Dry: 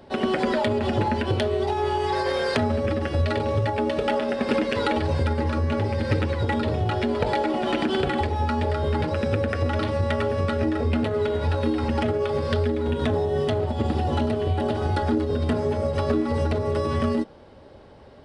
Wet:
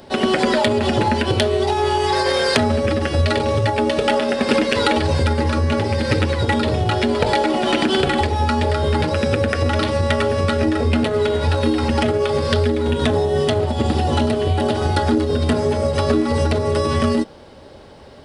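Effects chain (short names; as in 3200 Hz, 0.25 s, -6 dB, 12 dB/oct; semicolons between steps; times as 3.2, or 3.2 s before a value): high shelf 3700 Hz +10.5 dB; notches 50/100 Hz; gain +5.5 dB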